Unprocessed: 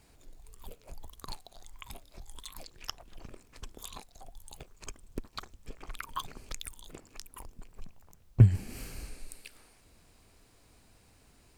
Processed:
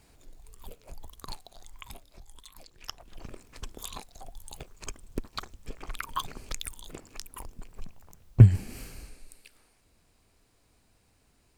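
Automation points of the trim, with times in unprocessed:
1.83 s +1.5 dB
2.51 s -6 dB
3.28 s +4.5 dB
8.44 s +4.5 dB
9.22 s -5 dB

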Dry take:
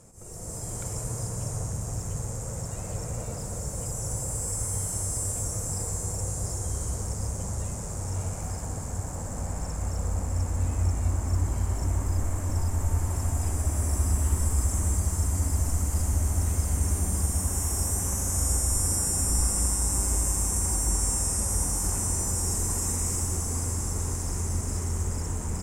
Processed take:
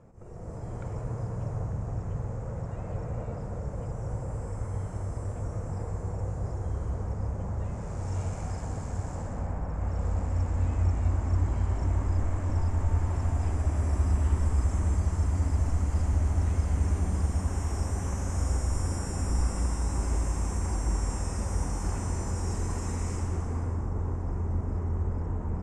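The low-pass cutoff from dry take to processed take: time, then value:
7.56 s 1.8 kHz
8.16 s 4.1 kHz
9.15 s 4.1 kHz
9.65 s 1.6 kHz
10.08 s 3.3 kHz
23.12 s 3.3 kHz
23.90 s 1.2 kHz

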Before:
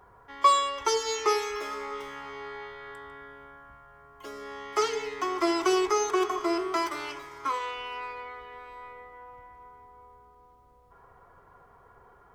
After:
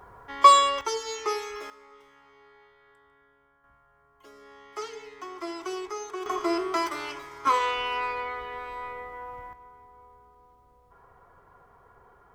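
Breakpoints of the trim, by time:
+6 dB
from 0.81 s -4 dB
from 1.70 s -16.5 dB
from 3.64 s -10 dB
from 6.26 s +1 dB
from 7.47 s +7.5 dB
from 9.53 s -0.5 dB

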